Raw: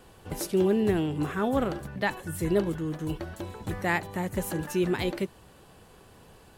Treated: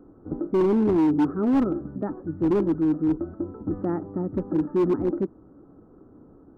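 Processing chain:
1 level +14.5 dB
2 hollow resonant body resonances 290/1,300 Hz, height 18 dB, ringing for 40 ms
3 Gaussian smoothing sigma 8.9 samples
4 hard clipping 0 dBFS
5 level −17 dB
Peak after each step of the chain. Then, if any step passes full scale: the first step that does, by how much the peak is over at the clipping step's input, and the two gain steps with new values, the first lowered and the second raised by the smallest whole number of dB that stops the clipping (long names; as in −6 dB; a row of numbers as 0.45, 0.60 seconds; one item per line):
+2.0, +9.5, +9.0, 0.0, −17.0 dBFS
step 1, 9.0 dB
step 1 +5.5 dB, step 5 −8 dB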